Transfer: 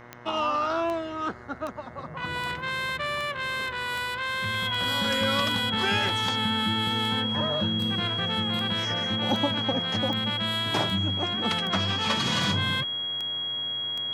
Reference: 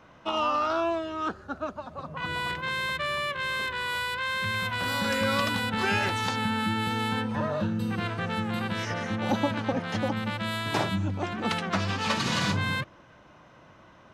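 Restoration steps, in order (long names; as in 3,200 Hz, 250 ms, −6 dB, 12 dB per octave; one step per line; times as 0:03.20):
click removal
hum removal 120.6 Hz, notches 18
notch filter 3,300 Hz, Q 30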